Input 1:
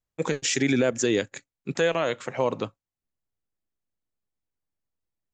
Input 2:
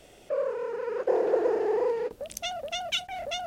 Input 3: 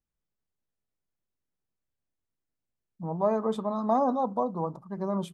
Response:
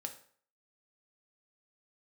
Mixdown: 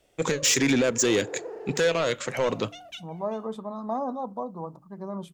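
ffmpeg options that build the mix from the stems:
-filter_complex "[0:a]highshelf=frequency=2500:gain=5.5,asoftclip=type=tanh:threshold=-20dB,equalizer=frequency=780:width_type=o:width=0.77:gain=-3.5,volume=3dB,asplit=2[link_01][link_02];[link_02]volume=-17dB[link_03];[1:a]volume=-13.5dB,asplit=2[link_04][link_05];[link_05]volume=-11.5dB[link_06];[2:a]volume=-5dB,asplit=2[link_07][link_08];[link_08]apad=whole_len=152682[link_09];[link_04][link_09]sidechaincompress=threshold=-44dB:ratio=8:attack=7.6:release=539[link_10];[3:a]atrim=start_sample=2205[link_11];[link_03][link_06]amix=inputs=2:normalize=0[link_12];[link_12][link_11]afir=irnorm=-1:irlink=0[link_13];[link_01][link_10][link_07][link_13]amix=inputs=4:normalize=0,bandreject=frequency=150.8:width_type=h:width=4,bandreject=frequency=301.6:width_type=h:width=4"

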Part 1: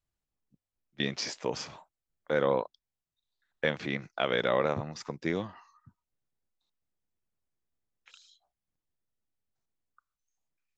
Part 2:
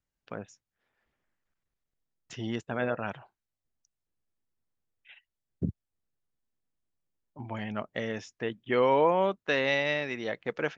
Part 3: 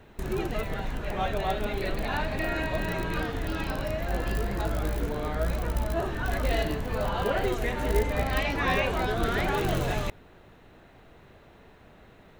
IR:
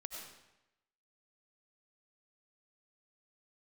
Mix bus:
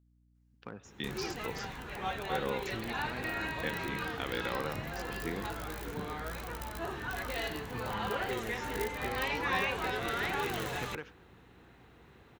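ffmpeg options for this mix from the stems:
-filter_complex "[0:a]volume=-7.5dB[link_01];[1:a]acompressor=threshold=-36dB:ratio=6,aeval=exprs='clip(val(0),-1,0.02)':channel_layout=same,adelay=350,volume=-3dB,asplit=2[link_02][link_03];[link_03]volume=-11dB[link_04];[2:a]acrossover=split=470|3000[link_05][link_06][link_07];[link_05]acompressor=threshold=-36dB:ratio=4[link_08];[link_08][link_06][link_07]amix=inputs=3:normalize=0,adelay=850,volume=-3.5dB[link_09];[3:a]atrim=start_sample=2205[link_10];[link_04][link_10]afir=irnorm=-1:irlink=0[link_11];[link_01][link_02][link_09][link_11]amix=inputs=4:normalize=0,highpass=62,equalizer=frequency=620:width=6.5:gain=-13,aeval=exprs='val(0)+0.000501*(sin(2*PI*60*n/s)+sin(2*PI*2*60*n/s)/2+sin(2*PI*3*60*n/s)/3+sin(2*PI*4*60*n/s)/4+sin(2*PI*5*60*n/s)/5)':channel_layout=same"

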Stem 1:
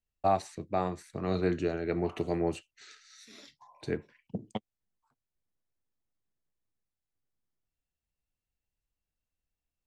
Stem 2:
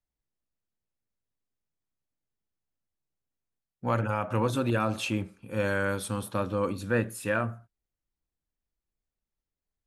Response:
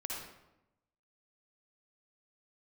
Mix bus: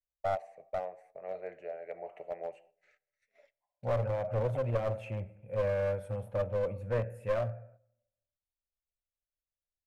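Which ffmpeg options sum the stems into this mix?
-filter_complex "[0:a]highpass=570,agate=range=-15dB:threshold=-54dB:ratio=16:detection=peak,volume=-3dB,asplit=2[link_01][link_02];[link_02]volume=-17.5dB[link_03];[1:a]volume=-2.5dB,asplit=2[link_04][link_05];[link_05]volume=-16dB[link_06];[2:a]atrim=start_sample=2205[link_07];[link_03][link_06]amix=inputs=2:normalize=0[link_08];[link_08][link_07]afir=irnorm=-1:irlink=0[link_09];[link_01][link_04][link_09]amix=inputs=3:normalize=0,agate=range=-9dB:threshold=-57dB:ratio=16:detection=peak,firequalizer=gain_entry='entry(120,0);entry(300,-20);entry(560,7);entry(1100,-18);entry(2100,-6);entry(3700,-29);entry(10000,-23)':delay=0.05:min_phase=1,aeval=exprs='clip(val(0),-1,0.0316)':channel_layout=same"

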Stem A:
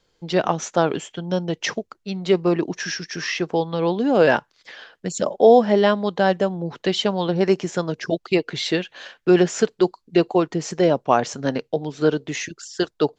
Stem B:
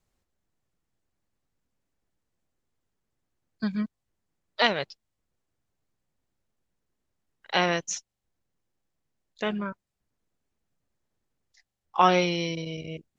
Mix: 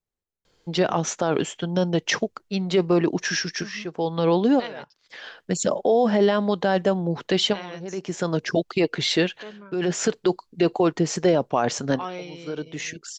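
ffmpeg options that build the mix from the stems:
ffmpeg -i stem1.wav -i stem2.wav -filter_complex "[0:a]alimiter=limit=-13dB:level=0:latency=1:release=23,adelay=450,volume=2.5dB[link_01];[1:a]equalizer=frequency=430:width=3.7:gain=6,volume=-13.5dB,asplit=2[link_02][link_03];[link_03]apad=whole_len=601264[link_04];[link_01][link_04]sidechaincompress=threshold=-50dB:ratio=8:attack=23:release=404[link_05];[link_05][link_02]amix=inputs=2:normalize=0" out.wav

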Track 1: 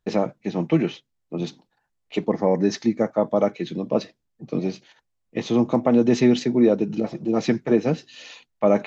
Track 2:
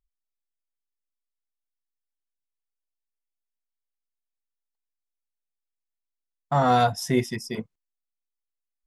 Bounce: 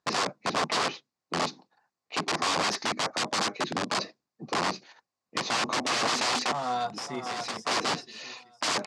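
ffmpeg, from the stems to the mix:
ffmpeg -i stem1.wav -i stem2.wav -filter_complex "[0:a]equalizer=frequency=3200:width_type=o:width=0.26:gain=-8,aeval=exprs='(mod(15*val(0)+1,2)-1)/15':channel_layout=same,volume=0.5dB[link_01];[1:a]highshelf=frequency=3900:gain=10,volume=-14dB,asplit=3[link_02][link_03][link_04];[link_03]volume=-8.5dB[link_05];[link_04]apad=whole_len=390957[link_06];[link_01][link_06]sidechaincompress=threshold=-50dB:ratio=10:attack=16:release=117[link_07];[link_05]aecho=0:1:566|1132|1698|2264:1|0.3|0.09|0.027[link_08];[link_07][link_02][link_08]amix=inputs=3:normalize=0,highpass=190,equalizer=frequency=750:width_type=q:width=4:gain=4,equalizer=frequency=1100:width_type=q:width=4:gain=7,equalizer=frequency=4700:width_type=q:width=4:gain=5,lowpass=frequency=7800:width=0.5412,lowpass=frequency=7800:width=1.3066" out.wav

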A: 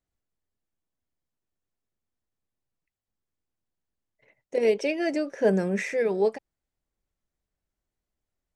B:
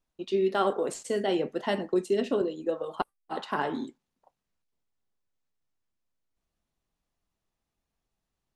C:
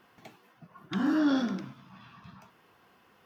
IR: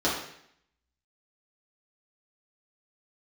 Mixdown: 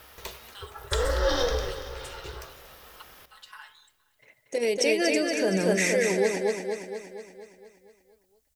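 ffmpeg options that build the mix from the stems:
-filter_complex "[0:a]volume=1.5dB,asplit=2[link_01][link_02];[link_02]volume=-6.5dB[link_03];[1:a]highpass=frequency=1200:width=0.5412,highpass=frequency=1200:width=1.3066,aecho=1:1:4.7:0.93,volume=-16.5dB,asplit=2[link_04][link_05];[link_05]volume=-22dB[link_06];[2:a]acontrast=48,aeval=exprs='val(0)*sin(2*PI*250*n/s)':channel_layout=same,volume=2.5dB,asplit=3[link_07][link_08][link_09];[link_08]volume=-20.5dB[link_10];[link_09]volume=-15dB[link_11];[link_01][link_07]amix=inputs=2:normalize=0,equalizer=frequency=65:width=3.1:gain=13.5,alimiter=limit=-19dB:level=0:latency=1:release=114,volume=0dB[link_12];[3:a]atrim=start_sample=2205[link_13];[link_10][link_13]afir=irnorm=-1:irlink=0[link_14];[link_03][link_06][link_11]amix=inputs=3:normalize=0,aecho=0:1:234|468|702|936|1170|1404|1638|1872|2106:1|0.57|0.325|0.185|0.106|0.0602|0.0343|0.0195|0.0111[link_15];[link_04][link_12][link_14][link_15]amix=inputs=4:normalize=0,crystalizer=i=4.5:c=0"

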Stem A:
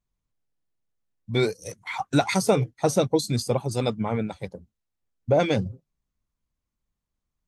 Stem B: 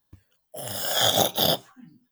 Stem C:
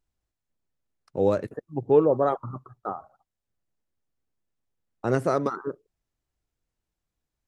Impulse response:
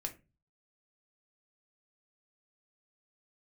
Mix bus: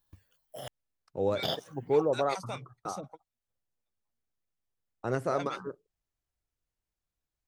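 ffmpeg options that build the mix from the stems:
-filter_complex "[0:a]highpass=frequency=170:width=0.5412,highpass=frequency=170:width=1.3066,equalizer=frequency=400:width=1.7:gain=-12,acrossover=split=540[link_01][link_02];[link_01]aeval=exprs='val(0)*(1-1/2+1/2*cos(2*PI*5.3*n/s))':channel_layout=same[link_03];[link_02]aeval=exprs='val(0)*(1-1/2-1/2*cos(2*PI*5.3*n/s))':channel_layout=same[link_04];[link_03][link_04]amix=inputs=2:normalize=0,volume=-8dB[link_05];[1:a]acompressor=threshold=-23dB:ratio=2.5,volume=-3.5dB,asplit=3[link_06][link_07][link_08];[link_06]atrim=end=0.68,asetpts=PTS-STARTPTS,afade=type=out:start_time=0.676:duration=0.004:curve=hsin[link_09];[link_07]atrim=start=0.68:end=1.43,asetpts=PTS-STARTPTS,volume=0[link_10];[link_08]atrim=start=1.43,asetpts=PTS-STARTPTS,afade=type=in:duration=0.004:curve=hsin[link_11];[link_09][link_10][link_11]concat=n=3:v=0:a=1[link_12];[2:a]volume=-5dB,asplit=2[link_13][link_14];[link_14]apad=whole_len=329441[link_15];[link_05][link_15]sidechaingate=range=-55dB:threshold=-57dB:ratio=16:detection=peak[link_16];[link_16][link_12][link_13]amix=inputs=3:normalize=0,acrossover=split=5500[link_17][link_18];[link_18]acompressor=threshold=-51dB:ratio=4:attack=1:release=60[link_19];[link_17][link_19]amix=inputs=2:normalize=0,equalizer=frequency=240:width=0.79:gain=-4"

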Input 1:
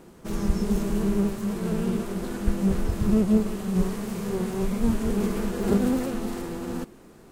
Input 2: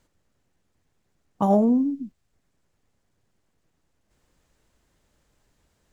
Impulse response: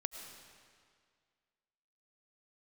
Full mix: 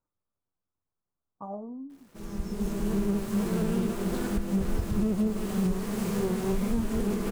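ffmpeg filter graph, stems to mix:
-filter_complex "[0:a]acrusher=bits=7:mix=0:aa=0.000001,adelay=1900,volume=1.5dB[link_01];[1:a]highshelf=frequency=1700:width_type=q:width=3:gain=-12,flanger=delay=9.8:depth=1.9:regen=70:speed=0.34:shape=triangular,volume=-16dB,asplit=2[link_02][link_03];[link_03]apad=whole_len=406391[link_04];[link_01][link_04]sidechaincompress=threshold=-51dB:ratio=20:attack=8.7:release=1290[link_05];[link_05][link_02]amix=inputs=2:normalize=0,alimiter=limit=-18.5dB:level=0:latency=1:release=284"

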